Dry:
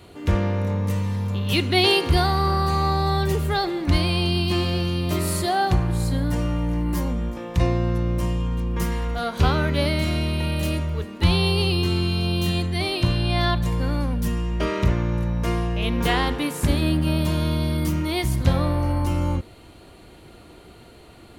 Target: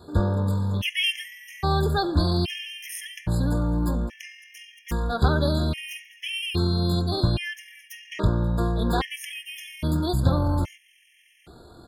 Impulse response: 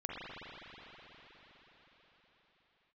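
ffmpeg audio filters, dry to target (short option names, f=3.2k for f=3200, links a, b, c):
-af "atempo=1.8,afftfilt=real='re*gt(sin(2*PI*0.61*pts/sr)*(1-2*mod(floor(b*sr/1024/1700),2)),0)':imag='im*gt(sin(2*PI*0.61*pts/sr)*(1-2*mod(floor(b*sr/1024/1700),2)),0)':win_size=1024:overlap=0.75"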